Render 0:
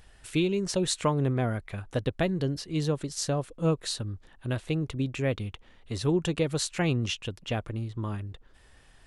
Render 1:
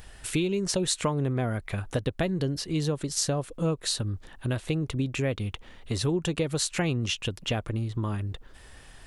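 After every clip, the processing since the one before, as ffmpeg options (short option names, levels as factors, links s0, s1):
-af "acompressor=threshold=0.0178:ratio=2.5,highshelf=f=9300:g=5.5,volume=2.37"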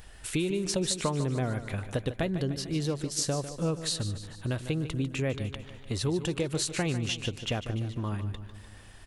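-af "aecho=1:1:149|298|447|596|745|894:0.251|0.141|0.0788|0.0441|0.0247|0.0138,volume=0.75"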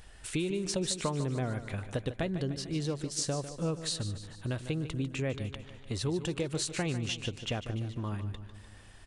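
-af "aresample=22050,aresample=44100,volume=0.708"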